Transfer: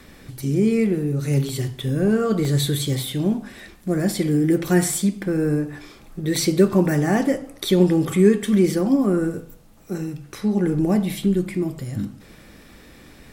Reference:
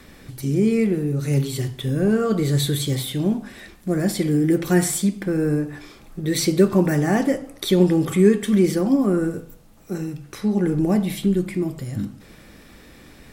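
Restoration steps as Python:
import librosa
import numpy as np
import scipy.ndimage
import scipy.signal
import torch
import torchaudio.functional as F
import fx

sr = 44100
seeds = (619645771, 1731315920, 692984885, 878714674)

y = fx.fix_interpolate(x, sr, at_s=(1.49, 2.45, 4.68, 6.36), length_ms=1.1)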